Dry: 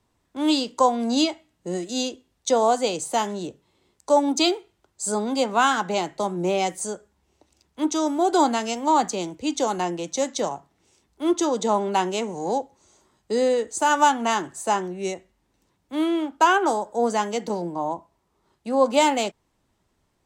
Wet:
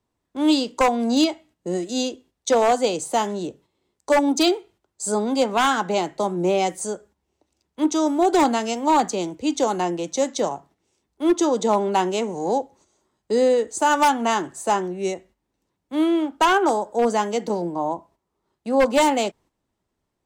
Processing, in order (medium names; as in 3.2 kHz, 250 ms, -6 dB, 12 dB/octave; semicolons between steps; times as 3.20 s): gate -52 dBFS, range -9 dB; peaking EQ 380 Hz +3.5 dB 2.2 oct; wavefolder -10.5 dBFS